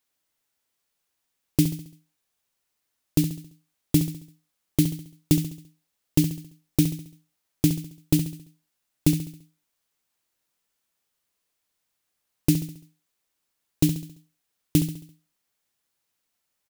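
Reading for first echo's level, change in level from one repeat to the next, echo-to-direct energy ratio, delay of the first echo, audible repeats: −10.0 dB, −6.5 dB, −9.0 dB, 68 ms, 4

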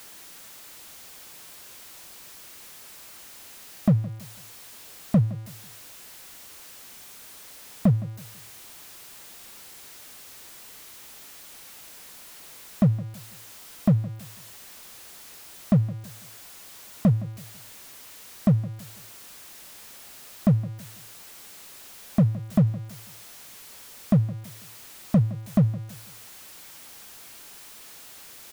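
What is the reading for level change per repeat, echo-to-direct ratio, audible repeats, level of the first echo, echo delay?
−9.5 dB, −17.5 dB, 2, −18.0 dB, 165 ms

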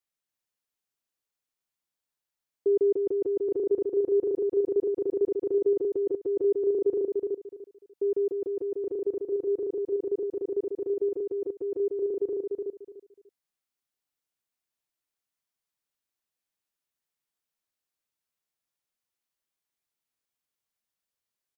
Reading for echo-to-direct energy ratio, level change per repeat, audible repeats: −4.0 dB, −13.0 dB, 3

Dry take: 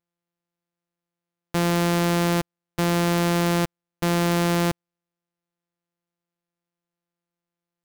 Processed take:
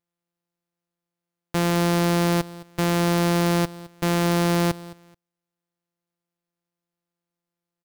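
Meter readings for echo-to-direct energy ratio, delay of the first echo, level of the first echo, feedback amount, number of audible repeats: −19.0 dB, 215 ms, −19.0 dB, 24%, 2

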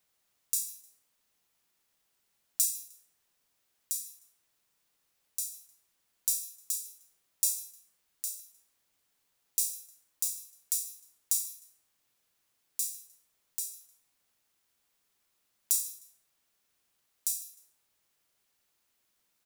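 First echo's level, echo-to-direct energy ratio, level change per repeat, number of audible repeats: −19.0 dB, −18.5 dB, −11.0 dB, 2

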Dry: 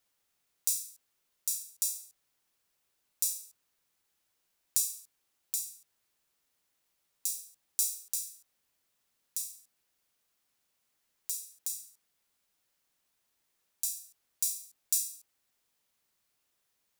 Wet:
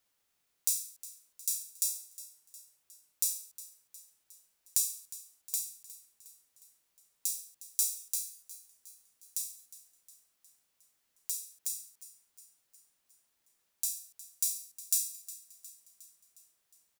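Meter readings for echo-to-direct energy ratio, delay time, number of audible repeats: −15.5 dB, 360 ms, 4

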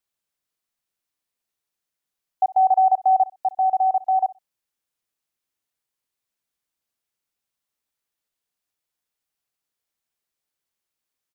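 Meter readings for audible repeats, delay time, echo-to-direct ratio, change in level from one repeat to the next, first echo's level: 2, 62 ms, −20.0 dB, −15.0 dB, −20.0 dB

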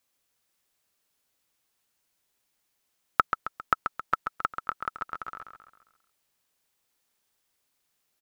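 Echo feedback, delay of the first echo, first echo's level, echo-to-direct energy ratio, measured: 46%, 134 ms, −7.0 dB, −6.0 dB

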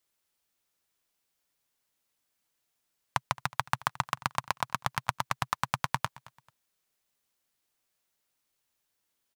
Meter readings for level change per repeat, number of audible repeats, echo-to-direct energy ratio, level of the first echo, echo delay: −10.5 dB, 2, −20.5 dB, −21.0 dB, 220 ms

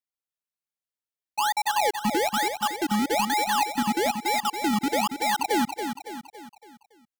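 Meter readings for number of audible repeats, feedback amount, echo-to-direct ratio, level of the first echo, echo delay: 5, 47%, −6.5 dB, −7.5 dB, 280 ms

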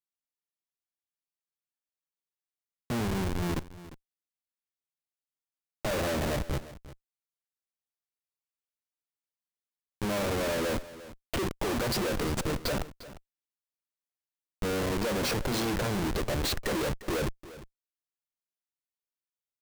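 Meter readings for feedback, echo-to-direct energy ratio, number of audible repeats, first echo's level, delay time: repeats not evenly spaced, −16.5 dB, 1, −16.5 dB, 351 ms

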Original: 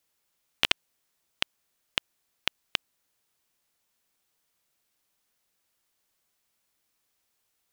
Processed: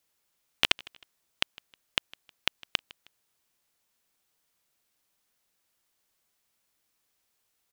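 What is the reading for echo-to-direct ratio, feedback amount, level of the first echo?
−22.0 dB, 35%, −22.5 dB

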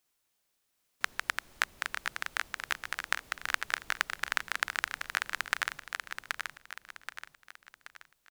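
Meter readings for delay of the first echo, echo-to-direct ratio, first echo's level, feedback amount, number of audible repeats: 778 ms, −3.5 dB, −4.5 dB, 42%, 5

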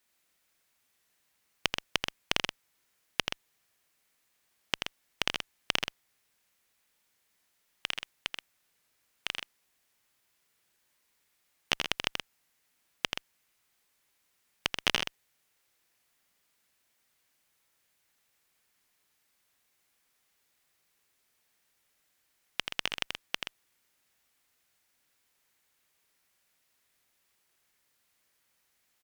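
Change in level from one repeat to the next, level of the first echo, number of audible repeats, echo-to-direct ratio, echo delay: repeats not evenly spaced, −5.5 dB, 2, −3.5 dB, 83 ms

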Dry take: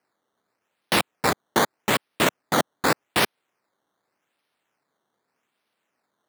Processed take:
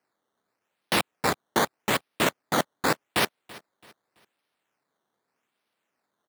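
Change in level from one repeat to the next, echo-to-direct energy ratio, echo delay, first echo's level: −9.0 dB, −20.5 dB, 333 ms, −21.0 dB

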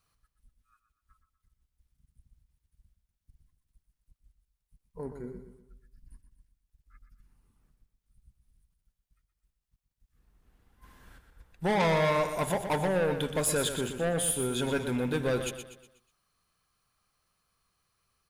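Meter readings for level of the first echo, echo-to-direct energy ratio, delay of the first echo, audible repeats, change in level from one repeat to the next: −9.0 dB, −8.0 dB, 122 ms, 4, −7.5 dB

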